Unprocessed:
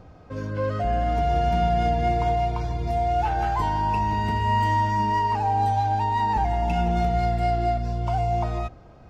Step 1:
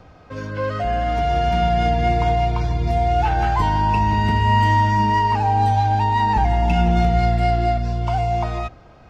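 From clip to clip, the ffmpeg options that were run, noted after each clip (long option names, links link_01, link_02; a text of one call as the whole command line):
ffmpeg -i in.wav -filter_complex "[0:a]equalizer=frequency=2600:width=0.35:gain=7.5,acrossover=split=330|1300[link_01][link_02][link_03];[link_01]dynaudnorm=framelen=430:gausssize=9:maxgain=7.5dB[link_04];[link_04][link_02][link_03]amix=inputs=3:normalize=0" out.wav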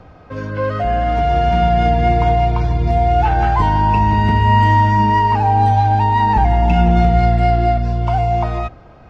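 ffmpeg -i in.wav -af "highshelf=frequency=3700:gain=-10,volume=4.5dB" out.wav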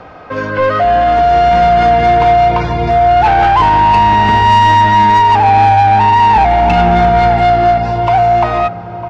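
ffmpeg -i in.wav -filter_complex "[0:a]asplit=2[link_01][link_02];[link_02]adelay=953,lowpass=frequency=890:poles=1,volume=-13.5dB,asplit=2[link_03][link_04];[link_04]adelay=953,lowpass=frequency=890:poles=1,volume=0.53,asplit=2[link_05][link_06];[link_06]adelay=953,lowpass=frequency=890:poles=1,volume=0.53,asplit=2[link_07][link_08];[link_08]adelay=953,lowpass=frequency=890:poles=1,volume=0.53,asplit=2[link_09][link_10];[link_10]adelay=953,lowpass=frequency=890:poles=1,volume=0.53[link_11];[link_01][link_03][link_05][link_07][link_09][link_11]amix=inputs=6:normalize=0,asplit=2[link_12][link_13];[link_13]highpass=frequency=720:poles=1,volume=19dB,asoftclip=type=tanh:threshold=-2dB[link_14];[link_12][link_14]amix=inputs=2:normalize=0,lowpass=frequency=2800:poles=1,volume=-6dB,volume=1dB" out.wav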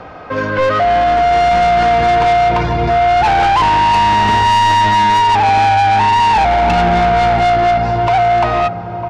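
ffmpeg -i in.wav -af "asoftclip=type=tanh:threshold=-10dB,volume=1.5dB" out.wav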